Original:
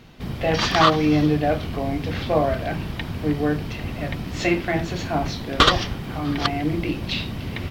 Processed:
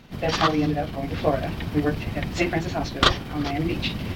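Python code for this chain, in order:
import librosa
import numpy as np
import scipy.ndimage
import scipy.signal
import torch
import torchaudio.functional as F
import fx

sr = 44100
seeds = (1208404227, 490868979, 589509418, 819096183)

y = fx.rider(x, sr, range_db=5, speed_s=2.0)
y = fx.stretch_grains(y, sr, factor=0.54, grain_ms=99.0)
y = F.gain(torch.from_numpy(y), -2.0).numpy()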